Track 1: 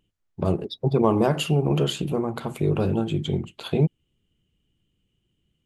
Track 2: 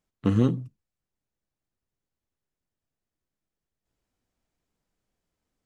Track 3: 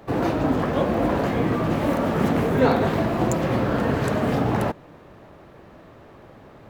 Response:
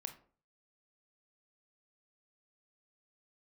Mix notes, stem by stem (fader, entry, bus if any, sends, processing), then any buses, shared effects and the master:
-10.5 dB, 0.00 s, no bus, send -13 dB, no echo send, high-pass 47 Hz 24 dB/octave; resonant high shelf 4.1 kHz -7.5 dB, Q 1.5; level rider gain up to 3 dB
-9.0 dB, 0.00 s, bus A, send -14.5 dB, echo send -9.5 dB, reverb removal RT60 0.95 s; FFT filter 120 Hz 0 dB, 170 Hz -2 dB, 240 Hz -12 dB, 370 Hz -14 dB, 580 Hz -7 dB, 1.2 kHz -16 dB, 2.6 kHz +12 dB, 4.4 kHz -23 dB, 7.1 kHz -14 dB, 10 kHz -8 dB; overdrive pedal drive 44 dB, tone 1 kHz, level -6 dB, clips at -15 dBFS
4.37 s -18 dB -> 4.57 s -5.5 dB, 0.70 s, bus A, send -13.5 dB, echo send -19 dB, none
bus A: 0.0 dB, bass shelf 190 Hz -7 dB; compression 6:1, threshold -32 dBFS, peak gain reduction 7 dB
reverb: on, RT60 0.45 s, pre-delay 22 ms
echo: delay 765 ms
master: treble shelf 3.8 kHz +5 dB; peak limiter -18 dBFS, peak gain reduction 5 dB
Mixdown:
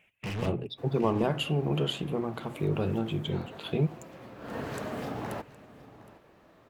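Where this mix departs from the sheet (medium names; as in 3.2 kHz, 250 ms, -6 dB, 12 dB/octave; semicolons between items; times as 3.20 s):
stem 3 -18.0 dB -> -24.5 dB; master: missing peak limiter -18 dBFS, peak gain reduction 5 dB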